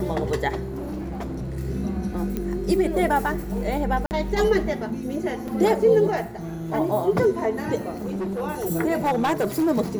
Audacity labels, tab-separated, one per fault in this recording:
0.630000	1.580000	clipped -27 dBFS
2.370000	2.370000	pop -15 dBFS
4.060000	4.110000	gap 49 ms
5.480000	5.480000	gap 4.2 ms
8.020000	8.410000	clipped -24 dBFS
9.020000	9.680000	clipped -17.5 dBFS

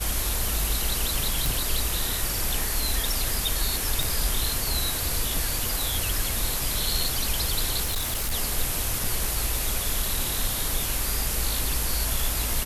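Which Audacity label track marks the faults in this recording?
1.460000	1.460000	pop
4.030000	4.030000	pop
7.840000	8.340000	clipped -23 dBFS
9.040000	9.040000	gap 2.9 ms

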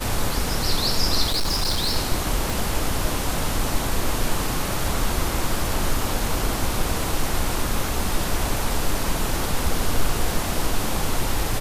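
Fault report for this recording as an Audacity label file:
1.260000	1.970000	clipped -18 dBFS
2.500000	2.500000	pop
5.560000	5.560000	gap 2 ms

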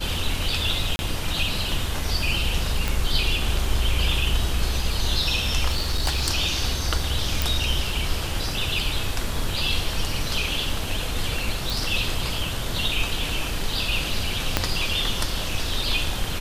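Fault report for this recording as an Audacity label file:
0.960000	0.990000	gap 31 ms
2.880000	2.880000	pop
5.670000	6.290000	clipped -18 dBFS
7.420000	7.420000	pop
11.700000	11.700000	pop
14.570000	14.570000	pop -3 dBFS

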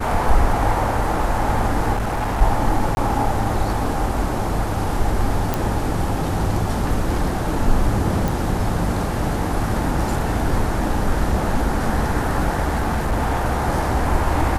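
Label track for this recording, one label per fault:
1.930000	2.420000	clipped -18.5 dBFS
2.950000	2.970000	gap 21 ms
5.540000	5.540000	pop
8.280000	8.280000	pop
12.670000	13.450000	clipped -15.5 dBFS

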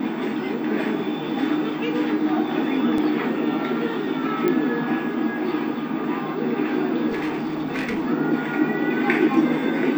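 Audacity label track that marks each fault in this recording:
2.980000	2.980000	gap 2.8 ms
4.480000	4.480000	pop -11 dBFS
7.080000	8.080000	clipped -21.5 dBFS

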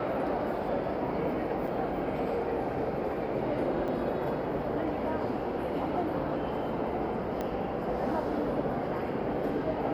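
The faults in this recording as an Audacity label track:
1.670000	1.670000	gap 4.8 ms
3.880000	3.880000	gap 4.6 ms
7.410000	7.410000	pop -21 dBFS

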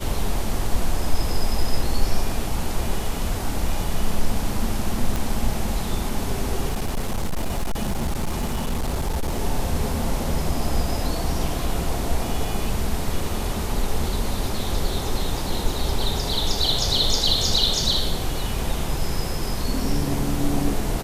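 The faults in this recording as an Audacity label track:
5.160000	5.160000	pop
6.680000	9.400000	clipped -19.5 dBFS

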